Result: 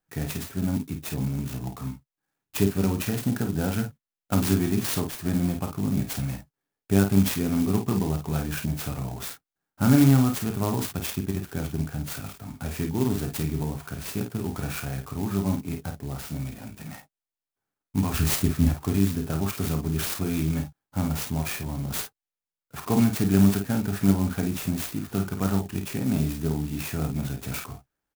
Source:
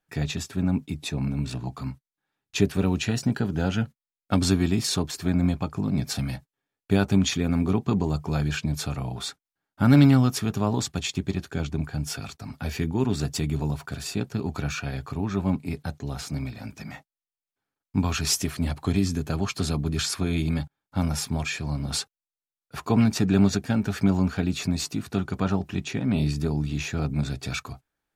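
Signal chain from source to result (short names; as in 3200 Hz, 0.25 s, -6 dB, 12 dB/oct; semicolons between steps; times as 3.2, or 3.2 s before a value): 18.14–18.69 low shelf 270 Hz +10 dB; early reflections 31 ms -9.5 dB, 51 ms -7 dB; clock jitter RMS 0.069 ms; gain -2 dB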